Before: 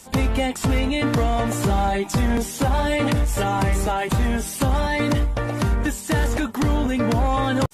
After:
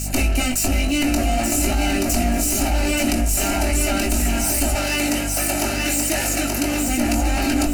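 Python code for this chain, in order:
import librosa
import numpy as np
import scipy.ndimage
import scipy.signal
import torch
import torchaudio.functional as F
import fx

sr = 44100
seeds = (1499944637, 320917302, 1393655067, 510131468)

y = fx.lower_of_two(x, sr, delay_ms=3.0)
y = fx.high_shelf_res(y, sr, hz=2300.0, db=8.5, q=3.0)
y = fx.fixed_phaser(y, sr, hz=690.0, stages=8)
y = fx.doubler(y, sr, ms=21.0, db=-6.5)
y = fx.echo_feedback(y, sr, ms=879, feedback_pct=33, wet_db=-4.5)
y = fx.rider(y, sr, range_db=10, speed_s=0.5)
y = fx.highpass(y, sr, hz=380.0, slope=6, at=(4.75, 6.88))
y = fx.add_hum(y, sr, base_hz=50, snr_db=14)
y = fx.env_flatten(y, sr, amount_pct=50)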